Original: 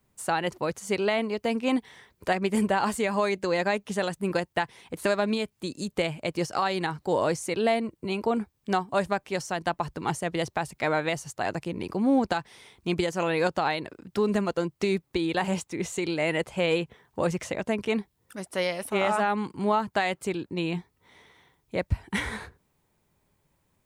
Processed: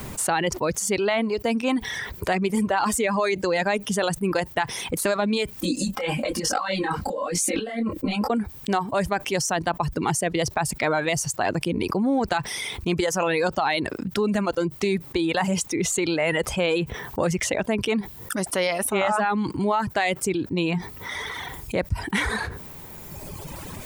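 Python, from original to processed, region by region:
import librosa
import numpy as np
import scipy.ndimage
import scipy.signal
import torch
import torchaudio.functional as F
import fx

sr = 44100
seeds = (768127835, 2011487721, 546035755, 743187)

y = fx.chain(x, sr, fx.over_compress(threshold_db=-32.0, ratio=-0.5),
    fx.comb(ms=3.8, depth=0.91),
    fx.detune_double(cents=36), at=(5.56, 8.3))
y = fx.dereverb_blind(y, sr, rt60_s=1.3)
y = fx.env_flatten(y, sr, amount_pct=70)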